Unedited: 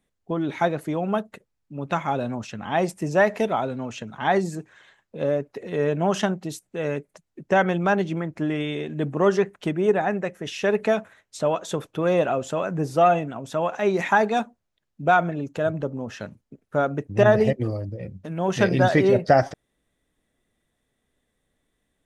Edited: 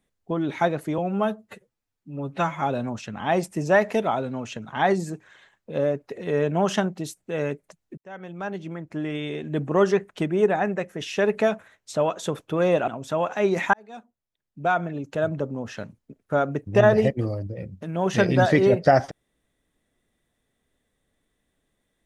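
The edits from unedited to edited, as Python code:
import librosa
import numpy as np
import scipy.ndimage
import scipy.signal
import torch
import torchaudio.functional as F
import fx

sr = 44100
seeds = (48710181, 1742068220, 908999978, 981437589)

y = fx.edit(x, sr, fx.stretch_span(start_s=0.98, length_s=1.09, factor=1.5),
    fx.fade_in_span(start_s=7.43, length_s=1.65),
    fx.cut(start_s=12.33, length_s=0.97),
    fx.fade_in_span(start_s=14.16, length_s=1.6), tone=tone)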